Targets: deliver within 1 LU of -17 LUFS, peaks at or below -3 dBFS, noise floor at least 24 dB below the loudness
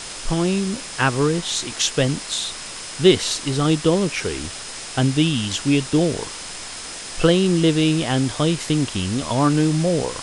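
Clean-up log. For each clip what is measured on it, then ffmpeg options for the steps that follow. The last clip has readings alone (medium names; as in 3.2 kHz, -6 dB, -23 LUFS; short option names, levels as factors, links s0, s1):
steady tone 5.1 kHz; tone level -41 dBFS; noise floor -34 dBFS; noise floor target -45 dBFS; loudness -20.5 LUFS; peak level -3.5 dBFS; loudness target -17.0 LUFS
-> -af "bandreject=f=5100:w=30"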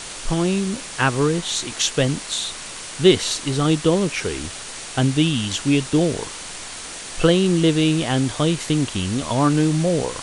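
steady tone not found; noise floor -34 dBFS; noise floor target -44 dBFS
-> -af "afftdn=nr=10:nf=-34"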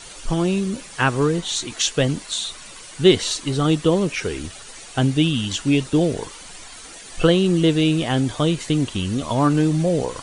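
noise floor -40 dBFS; noise floor target -45 dBFS
-> -af "afftdn=nr=6:nf=-40"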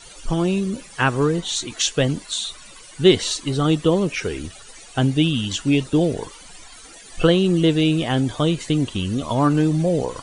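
noise floor -43 dBFS; noise floor target -45 dBFS
-> -af "afftdn=nr=6:nf=-43"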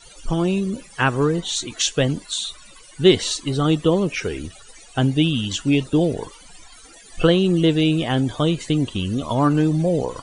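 noise floor -46 dBFS; loudness -20.5 LUFS; peak level -3.5 dBFS; loudness target -17.0 LUFS
-> -af "volume=1.5,alimiter=limit=0.708:level=0:latency=1"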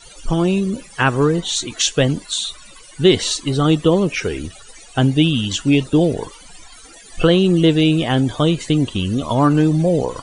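loudness -17.5 LUFS; peak level -3.0 dBFS; noise floor -42 dBFS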